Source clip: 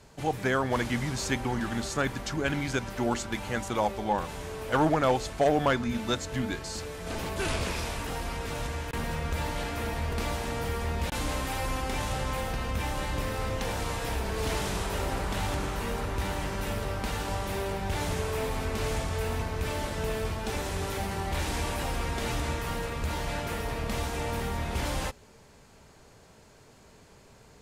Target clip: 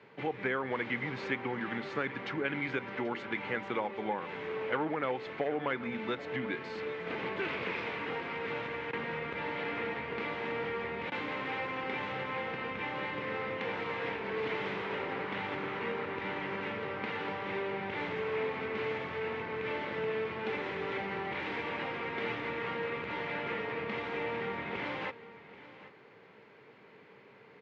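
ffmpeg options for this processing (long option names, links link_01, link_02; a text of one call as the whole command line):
ffmpeg -i in.wav -af "acompressor=threshold=-30dB:ratio=4,highpass=frequency=150:width=0.5412,highpass=frequency=150:width=1.3066,equalizer=frequency=160:width_type=q:width=4:gain=-5,equalizer=frequency=240:width_type=q:width=4:gain=-4,equalizer=frequency=450:width_type=q:width=4:gain=4,equalizer=frequency=660:width_type=q:width=4:gain=-7,equalizer=frequency=2100:width_type=q:width=4:gain=7,lowpass=frequency=3100:width=0.5412,lowpass=frequency=3100:width=1.3066,aecho=1:1:784:0.15" out.wav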